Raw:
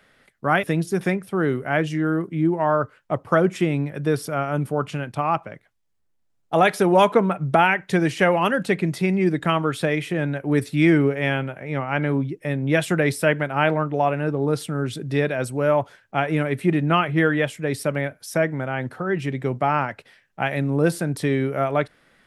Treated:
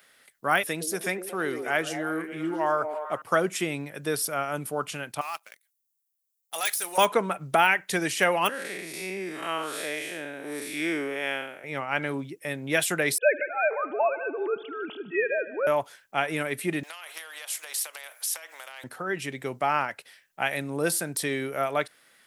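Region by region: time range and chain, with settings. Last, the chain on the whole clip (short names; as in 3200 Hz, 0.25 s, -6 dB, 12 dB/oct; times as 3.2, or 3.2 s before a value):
0.66–3.22 low shelf 150 Hz -8.5 dB + delay with a stepping band-pass 0.114 s, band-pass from 360 Hz, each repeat 0.7 oct, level -4.5 dB
5.21–6.98 differentiator + sample leveller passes 2
8.49–11.64 time blur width 0.175 s + HPF 300 Hz
13.18–15.67 sine-wave speech + multi-head echo 76 ms, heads first and second, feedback 53%, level -19 dB
16.83–18.84 steep high-pass 560 Hz + compressor 16:1, threshold -31 dBFS + spectral compressor 2:1
whole clip: de-esser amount 55%; RIAA curve recording; gain -3.5 dB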